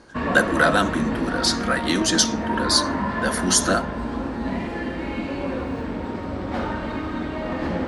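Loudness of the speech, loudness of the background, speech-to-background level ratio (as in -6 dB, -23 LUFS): -21.5 LUFS, -27.0 LUFS, 5.5 dB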